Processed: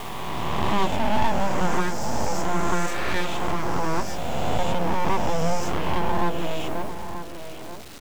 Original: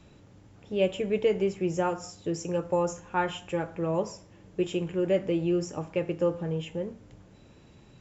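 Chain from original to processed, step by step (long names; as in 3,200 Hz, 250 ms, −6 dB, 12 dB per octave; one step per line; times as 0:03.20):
peak hold with a rise ahead of every peak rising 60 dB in 2.74 s
downward expander −48 dBFS
low-shelf EQ 380 Hz +7.5 dB
full-wave rectification
bit reduction 8 bits
slap from a distant wall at 160 metres, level −11 dB
one half of a high-frequency compander encoder only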